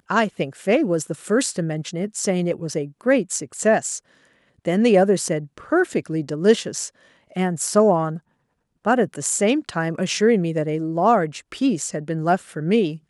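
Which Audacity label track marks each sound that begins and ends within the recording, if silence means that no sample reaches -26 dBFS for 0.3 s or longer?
4.660000	6.870000	sound
7.360000	8.170000	sound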